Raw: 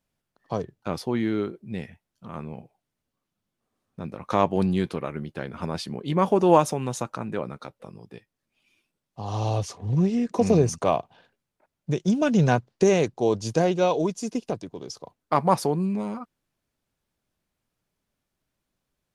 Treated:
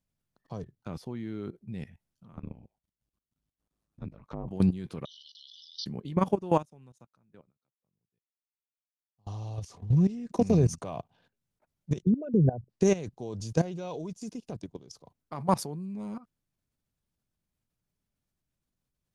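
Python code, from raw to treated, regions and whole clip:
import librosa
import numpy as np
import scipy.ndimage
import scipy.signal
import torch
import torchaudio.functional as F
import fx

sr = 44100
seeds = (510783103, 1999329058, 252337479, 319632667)

y = fx.chain(x, sr, fx.env_lowpass_down(base_hz=560.0, full_db=-23.0),
    fx.ring_mod(carrier_hz=53.0), at=(2.32, 4.48))
y = fx.chain(y, sr, fx.brickwall_bandpass(low_hz=2900.0, high_hz=6100.0),
    fx.peak_eq(hz=4100.0, db=5.0, octaves=0.21),
    fx.env_flatten(amount_pct=70), at=(5.05, 5.86))
y = fx.chain(y, sr, fx.highpass(hz=48.0, slope=12),
    fx.upward_expand(threshold_db=-40.0, expansion=2.5), at=(6.36, 9.27))
y = fx.chain(y, sr, fx.envelope_sharpen(power=3.0),
    fx.band_squash(depth_pct=40), at=(12.02, 12.7))
y = fx.bass_treble(y, sr, bass_db=9, treble_db=4)
y = fx.level_steps(y, sr, step_db=16)
y = F.gain(torch.from_numpy(y), -4.5).numpy()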